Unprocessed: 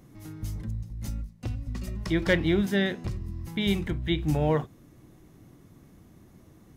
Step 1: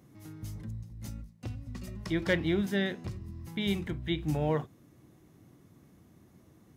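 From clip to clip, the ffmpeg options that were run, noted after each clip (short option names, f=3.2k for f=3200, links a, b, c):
-af "highpass=71,volume=-4.5dB"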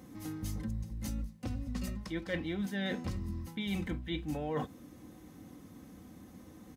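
-af "aecho=1:1:3.9:0.57,areverse,acompressor=threshold=-38dB:ratio=16,areverse,volume=6dB"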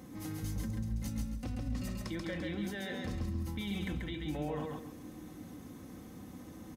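-filter_complex "[0:a]alimiter=level_in=9dB:limit=-24dB:level=0:latency=1:release=48,volume=-9dB,asplit=2[a][b];[b]aecho=0:1:136|272|408|544:0.708|0.198|0.0555|0.0155[c];[a][c]amix=inputs=2:normalize=0,volume=2dB"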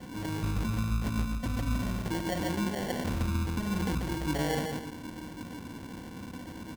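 -af "acrusher=samples=35:mix=1:aa=0.000001,volume=6.5dB"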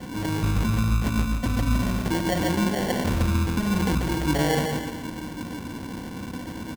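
-af "aecho=1:1:301:0.211,volume=7.5dB"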